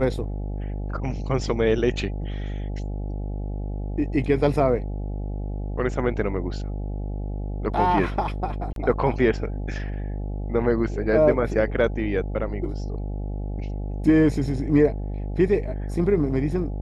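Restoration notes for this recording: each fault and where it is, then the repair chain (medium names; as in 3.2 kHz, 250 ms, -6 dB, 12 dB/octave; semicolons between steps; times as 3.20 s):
buzz 50 Hz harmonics 17 -29 dBFS
8.73–8.76 s: dropout 32 ms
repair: de-hum 50 Hz, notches 17; interpolate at 8.73 s, 32 ms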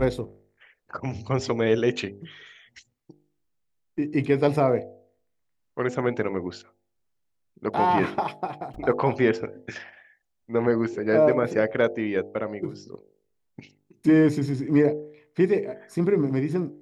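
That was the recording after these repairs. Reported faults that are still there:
nothing left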